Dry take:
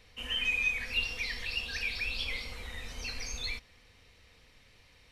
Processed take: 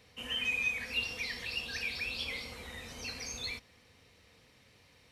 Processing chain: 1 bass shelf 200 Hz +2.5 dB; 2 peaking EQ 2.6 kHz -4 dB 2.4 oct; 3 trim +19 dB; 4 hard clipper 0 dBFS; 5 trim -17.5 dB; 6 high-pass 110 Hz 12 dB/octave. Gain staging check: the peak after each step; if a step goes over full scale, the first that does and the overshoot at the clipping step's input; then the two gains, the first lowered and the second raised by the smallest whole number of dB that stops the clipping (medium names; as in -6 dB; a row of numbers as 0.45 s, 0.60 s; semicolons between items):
-18.5 dBFS, -21.0 dBFS, -2.0 dBFS, -2.0 dBFS, -19.5 dBFS, -21.5 dBFS; nothing clips